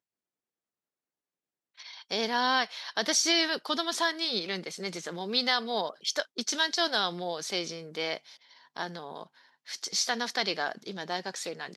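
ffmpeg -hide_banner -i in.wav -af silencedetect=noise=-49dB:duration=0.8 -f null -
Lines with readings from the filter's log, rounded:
silence_start: 0.00
silence_end: 1.78 | silence_duration: 1.78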